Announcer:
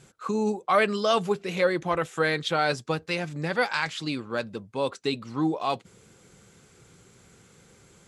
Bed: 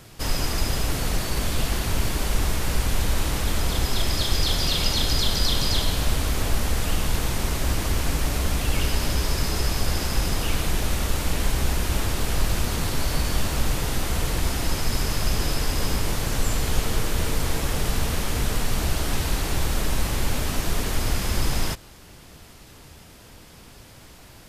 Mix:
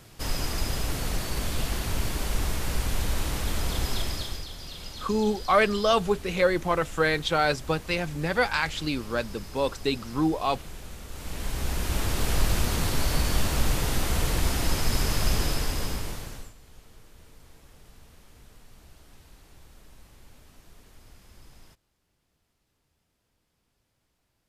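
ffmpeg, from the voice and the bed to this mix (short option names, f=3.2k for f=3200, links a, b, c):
-filter_complex "[0:a]adelay=4800,volume=1dB[a];[1:a]volume=12dB,afade=t=out:st=3.92:d=0.55:silence=0.223872,afade=t=in:st=11.08:d=1.22:silence=0.149624,afade=t=out:st=15.32:d=1.21:silence=0.0421697[b];[a][b]amix=inputs=2:normalize=0"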